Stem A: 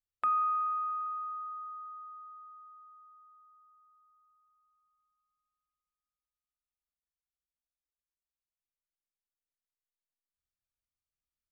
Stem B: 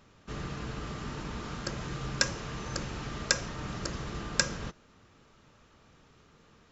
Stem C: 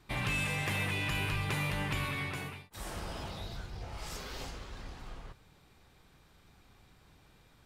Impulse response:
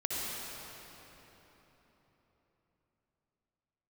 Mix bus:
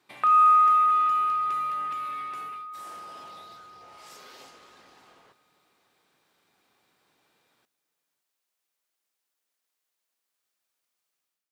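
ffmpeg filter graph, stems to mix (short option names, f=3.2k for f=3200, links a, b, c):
-filter_complex "[0:a]dynaudnorm=f=120:g=5:m=13dB,volume=0.5dB[a];[2:a]acompressor=threshold=-37dB:ratio=6,volume=-4dB,asplit=2[b][c];[c]volume=-19.5dB,aecho=0:1:560:1[d];[a][b][d]amix=inputs=3:normalize=0,highpass=320"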